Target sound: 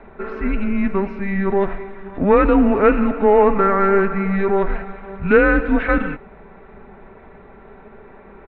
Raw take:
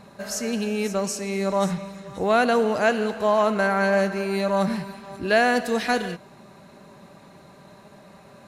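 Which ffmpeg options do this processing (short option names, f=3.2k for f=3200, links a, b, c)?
-filter_complex "[0:a]aecho=1:1:4.6:0.37,asplit=2[a][b];[b]asoftclip=type=tanh:threshold=-19dB,volume=-3dB[c];[a][c]amix=inputs=2:normalize=0,highpass=f=210:t=q:w=0.5412,highpass=f=210:t=q:w=1.307,lowpass=f=2.6k:t=q:w=0.5176,lowpass=f=2.6k:t=q:w=0.7071,lowpass=f=2.6k:t=q:w=1.932,afreqshift=-200,volume=2.5dB"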